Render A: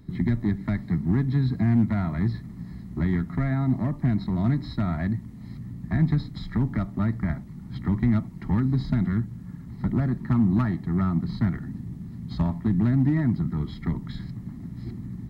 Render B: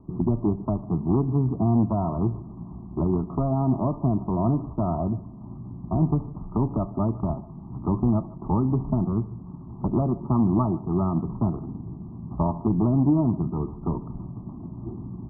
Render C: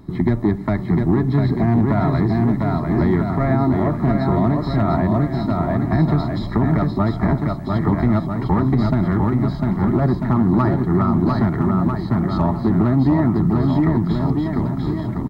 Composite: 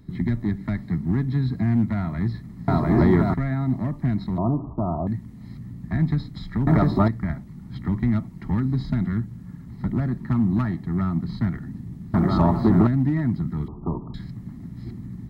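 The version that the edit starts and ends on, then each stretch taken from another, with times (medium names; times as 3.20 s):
A
2.68–3.34 s: from C
4.38–5.07 s: from B
6.67–7.08 s: from C
12.14–12.87 s: from C
13.68–14.14 s: from B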